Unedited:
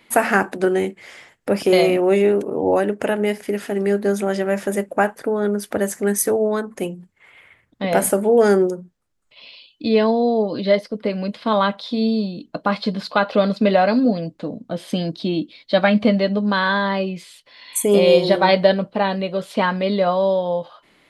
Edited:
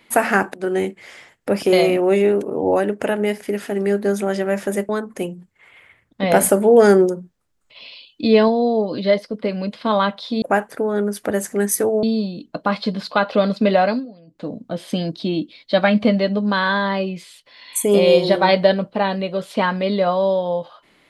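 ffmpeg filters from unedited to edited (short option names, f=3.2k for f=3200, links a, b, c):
-filter_complex "[0:a]asplit=9[a][b][c][d][e][f][g][h][i];[a]atrim=end=0.54,asetpts=PTS-STARTPTS,afade=t=out:st=0.536:d=0.004:c=hsin:silence=0.177828[j];[b]atrim=start=0.54:end=4.892,asetpts=PTS-STARTPTS,afade=t=in:d=0.25:silence=0.177828[k];[c]atrim=start=6.498:end=7.832[l];[d]atrim=start=7.828:end=10.092,asetpts=PTS-STARTPTS,volume=3dB[m];[e]atrim=start=10.088:end=12.032[n];[f]atrim=start=4.888:end=6.502[o];[g]atrim=start=12.028:end=14.06,asetpts=PTS-STARTPTS,afade=t=out:st=1.762:d=0.27:c=qsin:silence=0.0841395[p];[h]atrim=start=14.06:end=14.27,asetpts=PTS-STARTPTS,volume=-21.5dB[q];[i]atrim=start=14.27,asetpts=PTS-STARTPTS,afade=t=in:d=0.27:c=qsin:silence=0.0841395[r];[j][k]concat=n=2:v=0:a=1[s];[s][l]acrossfade=d=0.004:c1=hsin:c2=hsin[t];[t][m]acrossfade=d=0.004:c1=hsin:c2=hsin[u];[u][n]acrossfade=d=0.004:c1=hsin:c2=hsin[v];[v][o]acrossfade=d=0.004:c1=hsin:c2=hsin[w];[p][q][r]concat=n=3:v=0:a=1[x];[w][x]acrossfade=d=0.004:c1=hsin:c2=hsin"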